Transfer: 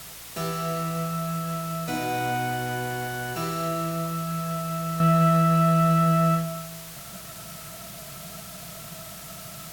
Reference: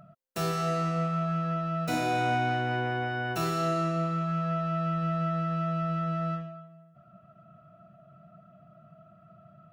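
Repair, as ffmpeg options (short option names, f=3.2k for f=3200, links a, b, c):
-af "bandreject=f=56.6:t=h:w=4,bandreject=f=113.2:t=h:w=4,bandreject=f=169.8:t=h:w=4,afwtdn=0.0089,asetnsamples=n=441:p=0,asendcmd='5 volume volume -10dB',volume=0dB"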